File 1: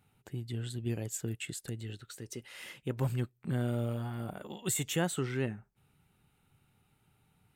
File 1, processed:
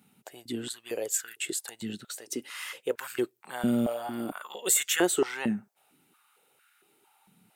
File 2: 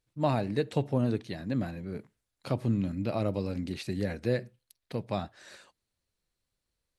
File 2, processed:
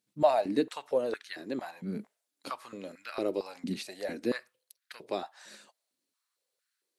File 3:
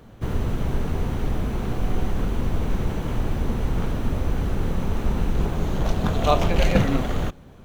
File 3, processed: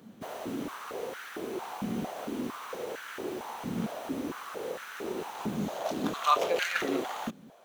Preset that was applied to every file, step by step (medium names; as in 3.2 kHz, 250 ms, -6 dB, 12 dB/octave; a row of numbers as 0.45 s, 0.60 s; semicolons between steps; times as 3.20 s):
treble shelf 3.2 kHz +8.5 dB; step-sequenced high-pass 4.4 Hz 210–1500 Hz; peak normalisation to -12 dBFS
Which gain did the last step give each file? +2.5 dB, -4.5 dB, -9.5 dB